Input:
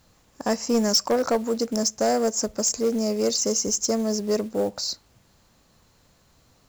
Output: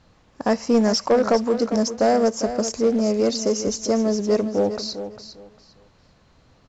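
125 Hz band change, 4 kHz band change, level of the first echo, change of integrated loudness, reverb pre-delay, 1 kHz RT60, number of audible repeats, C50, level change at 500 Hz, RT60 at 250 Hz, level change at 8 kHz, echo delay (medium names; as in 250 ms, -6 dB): +4.5 dB, -2.0 dB, -11.0 dB, +2.5 dB, no reverb, no reverb, 2, no reverb, +4.5 dB, no reverb, -6.0 dB, 401 ms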